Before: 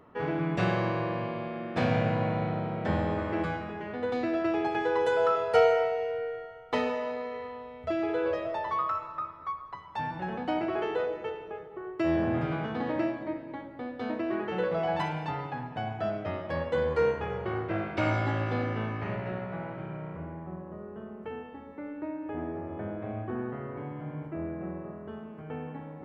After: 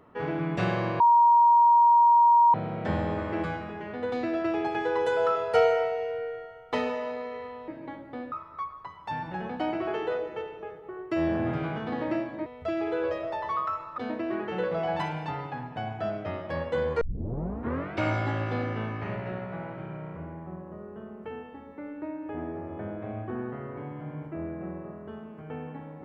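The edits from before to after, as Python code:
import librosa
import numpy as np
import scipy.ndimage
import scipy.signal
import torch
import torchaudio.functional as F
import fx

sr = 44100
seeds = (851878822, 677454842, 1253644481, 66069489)

y = fx.edit(x, sr, fx.bleep(start_s=1.0, length_s=1.54, hz=944.0, db=-15.0),
    fx.swap(start_s=7.68, length_s=1.52, other_s=13.34, other_length_s=0.64),
    fx.tape_start(start_s=17.01, length_s=0.94), tone=tone)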